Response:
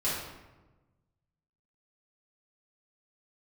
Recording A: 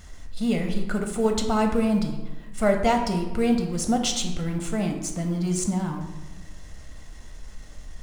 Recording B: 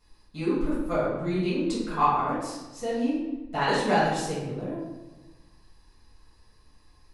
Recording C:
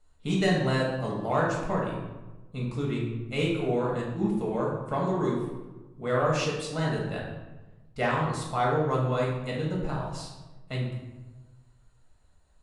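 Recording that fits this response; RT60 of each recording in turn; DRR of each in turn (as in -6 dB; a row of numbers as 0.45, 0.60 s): B; 1.2, 1.2, 1.2 s; 3.5, -10.0, -4.0 dB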